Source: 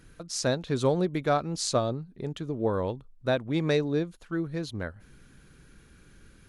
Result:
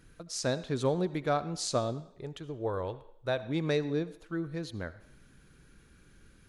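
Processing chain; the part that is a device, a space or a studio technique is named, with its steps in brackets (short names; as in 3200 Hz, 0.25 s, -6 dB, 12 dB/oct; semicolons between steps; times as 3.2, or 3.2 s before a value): 2–3.43 bell 220 Hz -11 dB 0.77 oct; filtered reverb send (on a send: HPF 330 Hz + LPF 8400 Hz + reverb RT60 0.75 s, pre-delay 63 ms, DRR 15 dB); on the sum: gain -4 dB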